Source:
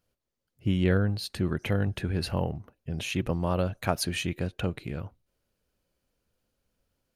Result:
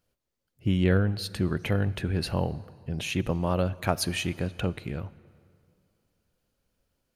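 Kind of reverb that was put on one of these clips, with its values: plate-style reverb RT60 2.4 s, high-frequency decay 0.7×, DRR 18.5 dB; gain +1 dB

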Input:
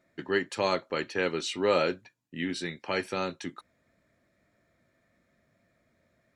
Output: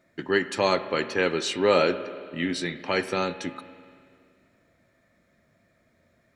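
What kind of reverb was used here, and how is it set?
spring tank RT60 2.2 s, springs 34/47 ms, chirp 75 ms, DRR 12 dB; gain +4.5 dB

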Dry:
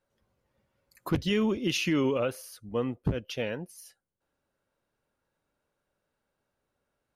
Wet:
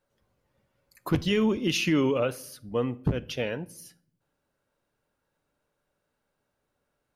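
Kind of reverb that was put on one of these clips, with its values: shoebox room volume 1000 m³, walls furnished, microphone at 0.39 m; gain +2 dB

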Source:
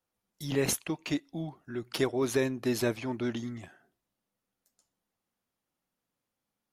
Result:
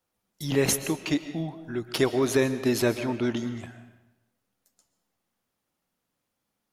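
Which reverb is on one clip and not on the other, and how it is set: digital reverb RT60 0.96 s, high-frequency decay 0.8×, pre-delay 90 ms, DRR 11.5 dB; gain +5 dB

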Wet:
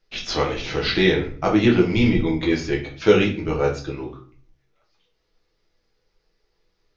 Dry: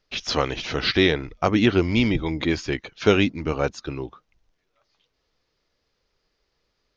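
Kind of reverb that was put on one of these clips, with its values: shoebox room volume 40 m³, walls mixed, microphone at 0.7 m; gain -3.5 dB

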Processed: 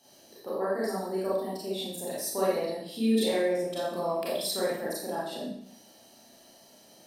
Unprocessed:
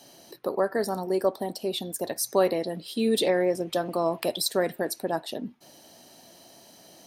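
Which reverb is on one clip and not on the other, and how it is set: Schroeder reverb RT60 0.68 s, combs from 28 ms, DRR -8 dB; gain -12 dB

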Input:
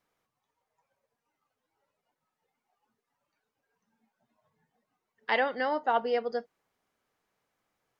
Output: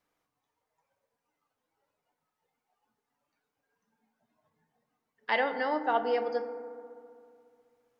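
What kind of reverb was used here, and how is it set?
FDN reverb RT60 2.4 s, low-frequency decay 1.1×, high-frequency decay 0.3×, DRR 8 dB; gain -1.5 dB

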